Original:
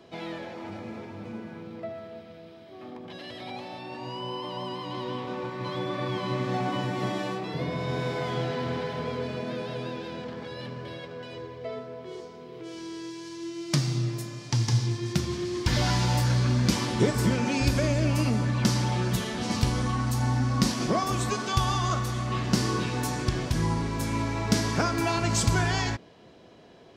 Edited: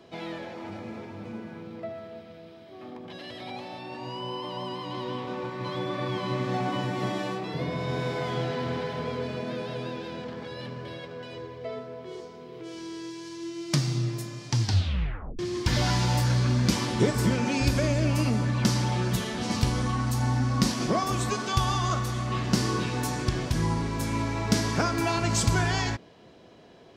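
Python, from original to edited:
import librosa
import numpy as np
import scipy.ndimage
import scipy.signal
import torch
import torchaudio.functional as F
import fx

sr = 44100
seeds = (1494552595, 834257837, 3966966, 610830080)

y = fx.edit(x, sr, fx.tape_stop(start_s=14.61, length_s=0.78), tone=tone)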